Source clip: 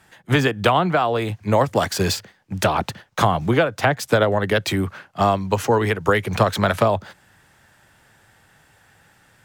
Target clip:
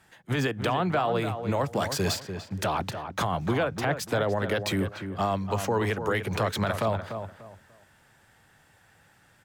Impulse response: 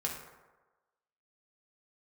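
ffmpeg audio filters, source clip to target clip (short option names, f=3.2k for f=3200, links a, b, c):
-filter_complex "[0:a]alimiter=limit=-11.5dB:level=0:latency=1:release=28,asplit=2[a][b];[b]adelay=294,lowpass=f=2.1k:p=1,volume=-8dB,asplit=2[c][d];[d]adelay=294,lowpass=f=2.1k:p=1,volume=0.27,asplit=2[e][f];[f]adelay=294,lowpass=f=2.1k:p=1,volume=0.27[g];[a][c][e][g]amix=inputs=4:normalize=0,volume=-5.5dB"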